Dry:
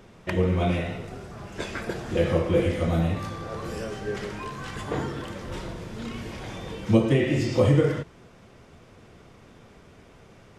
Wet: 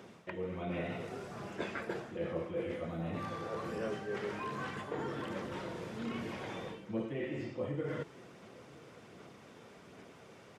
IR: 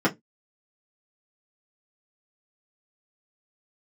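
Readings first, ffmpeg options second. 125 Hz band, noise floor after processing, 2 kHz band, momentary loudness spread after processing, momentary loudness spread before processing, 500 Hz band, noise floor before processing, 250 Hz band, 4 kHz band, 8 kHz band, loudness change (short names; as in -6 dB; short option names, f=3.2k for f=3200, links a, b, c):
-17.5 dB, -56 dBFS, -9.0 dB, 16 LU, 16 LU, -12.0 dB, -52 dBFS, -13.0 dB, -12.0 dB, -13.5 dB, -13.0 dB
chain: -filter_complex "[0:a]acrossover=split=3000[a][b];[b]acompressor=threshold=-55dB:ratio=4:attack=1:release=60[c];[a][c]amix=inputs=2:normalize=0,asoftclip=type=hard:threshold=-9.5dB,areverse,acompressor=threshold=-31dB:ratio=10,areverse,aphaser=in_gain=1:out_gain=1:delay=2.3:decay=0.21:speed=1.3:type=sinusoidal,highpass=170,aecho=1:1:972:0.0794,volume=-2.5dB"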